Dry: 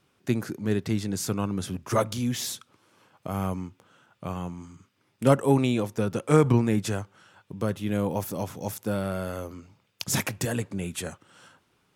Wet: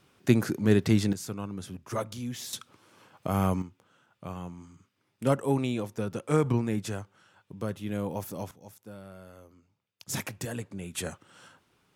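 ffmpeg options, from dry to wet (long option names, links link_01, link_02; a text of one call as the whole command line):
ffmpeg -i in.wav -af "asetnsamples=nb_out_samples=441:pad=0,asendcmd='1.13 volume volume -8dB;2.53 volume volume 3dB;3.62 volume volume -5.5dB;8.51 volume volume -17dB;10.09 volume volume -7dB;10.95 volume volume -0.5dB',volume=4dB" out.wav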